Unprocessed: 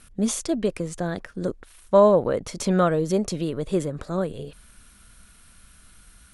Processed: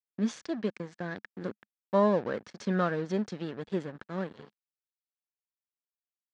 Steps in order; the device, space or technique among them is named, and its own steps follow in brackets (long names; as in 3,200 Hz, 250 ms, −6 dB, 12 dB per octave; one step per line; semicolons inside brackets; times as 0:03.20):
blown loudspeaker (dead-zone distortion −36 dBFS; loudspeaker in its box 130–5,600 Hz, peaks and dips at 210 Hz +5 dB, 620 Hz −3 dB, 1,700 Hz +9 dB)
level −7.5 dB